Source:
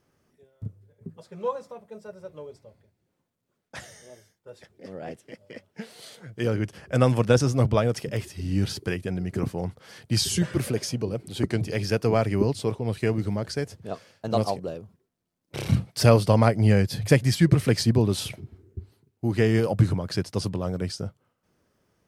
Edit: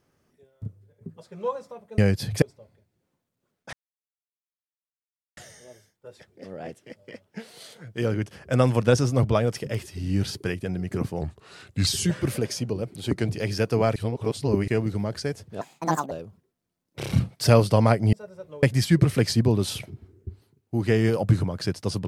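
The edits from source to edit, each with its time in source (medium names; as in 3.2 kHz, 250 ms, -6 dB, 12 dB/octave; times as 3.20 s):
1.98–2.48 s: swap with 16.69–17.13 s
3.79 s: insert silence 1.64 s
9.63–10.19 s: speed 85%
12.28–13.00 s: reverse
13.93–14.67 s: speed 148%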